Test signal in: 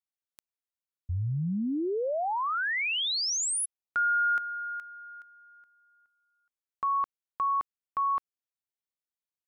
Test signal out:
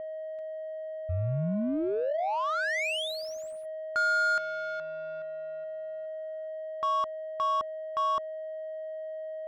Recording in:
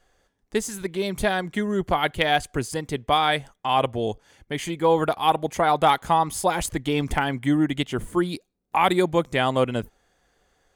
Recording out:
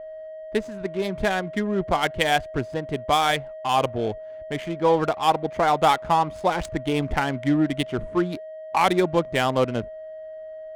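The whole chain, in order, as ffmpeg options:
-af "aeval=exprs='val(0)+0.02*sin(2*PI*630*n/s)':c=same,adynamicsmooth=sensitivity=3.5:basefreq=940"

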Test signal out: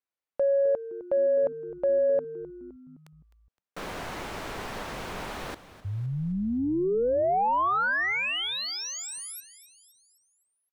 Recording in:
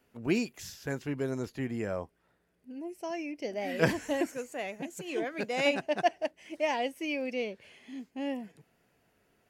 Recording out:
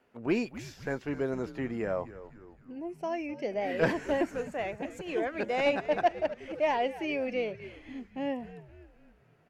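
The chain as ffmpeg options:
-filter_complex "[0:a]asplit=2[s0][s1];[s1]highpass=f=720:p=1,volume=4.47,asoftclip=type=tanh:threshold=0.251[s2];[s0][s2]amix=inputs=2:normalize=0,lowpass=f=1000:p=1,volume=0.501,asplit=6[s3][s4][s5][s6][s7][s8];[s4]adelay=258,afreqshift=-100,volume=0.178[s9];[s5]adelay=516,afreqshift=-200,volume=0.0912[s10];[s6]adelay=774,afreqshift=-300,volume=0.0462[s11];[s7]adelay=1032,afreqshift=-400,volume=0.0237[s12];[s8]adelay=1290,afreqshift=-500,volume=0.012[s13];[s3][s9][s10][s11][s12][s13]amix=inputs=6:normalize=0"

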